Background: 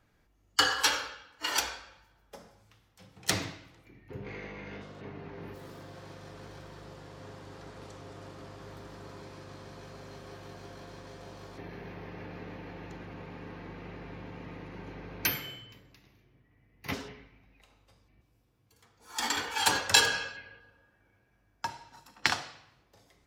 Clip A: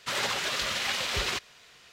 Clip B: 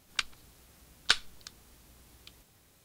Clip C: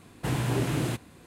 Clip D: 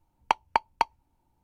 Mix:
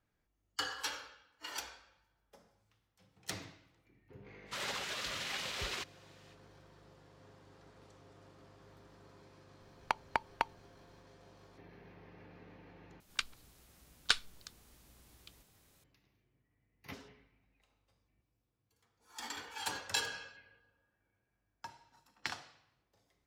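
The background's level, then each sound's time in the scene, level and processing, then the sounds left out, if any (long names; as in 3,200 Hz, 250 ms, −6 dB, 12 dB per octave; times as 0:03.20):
background −13 dB
0:04.45: mix in A −10 dB, fades 0.05 s
0:09.60: mix in D −1 dB + downward compressor, threshold −25 dBFS
0:13.00: overwrite with B −4.5 dB
not used: C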